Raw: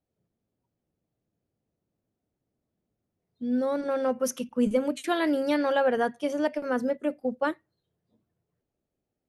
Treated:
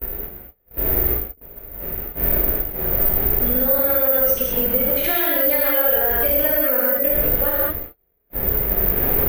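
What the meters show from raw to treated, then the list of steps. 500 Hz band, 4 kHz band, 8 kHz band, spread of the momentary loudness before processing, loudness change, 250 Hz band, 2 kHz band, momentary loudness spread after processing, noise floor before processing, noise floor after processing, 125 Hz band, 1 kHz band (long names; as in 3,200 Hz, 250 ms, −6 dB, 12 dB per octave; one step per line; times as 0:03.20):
+6.0 dB, +7.0 dB, +5.5 dB, 6 LU, +11.0 dB, 0.0 dB, +8.0 dB, 14 LU, −84 dBFS, −62 dBFS, can't be measured, +3.0 dB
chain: wind on the microphone 330 Hz −34 dBFS
gain on a spectral selection 0:01.11–0:01.41, 510–9,500 Hz −13 dB
noise gate −41 dBFS, range −40 dB
harmonic and percussive parts rebalanced harmonic +9 dB
graphic EQ with 10 bands 125 Hz −11 dB, 250 Hz −12 dB, 1,000 Hz −8 dB, 2,000 Hz +5 dB, 8,000 Hz −8 dB
downward compressor 4 to 1, threshold −38 dBFS, peak gain reduction 19 dB
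reverb whose tail is shaped and stops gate 240 ms flat, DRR −6 dB
bad sample-rate conversion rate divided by 3×, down filtered, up zero stuff
boost into a limiter +15.5 dB
level −4.5 dB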